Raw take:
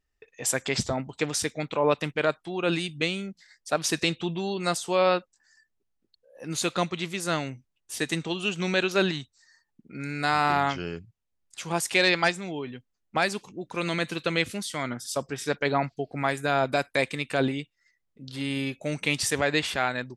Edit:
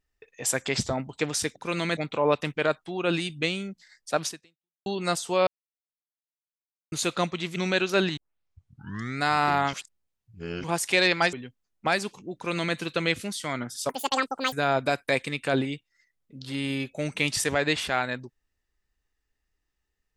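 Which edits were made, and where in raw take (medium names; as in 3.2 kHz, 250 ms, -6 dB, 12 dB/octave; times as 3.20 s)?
3.84–4.45 s: fade out exponential
5.06–6.51 s: mute
7.15–8.58 s: delete
9.19 s: tape start 1.05 s
10.75–11.66 s: reverse
12.35–12.63 s: delete
13.65–14.06 s: copy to 1.56 s
15.19–16.39 s: speed 189%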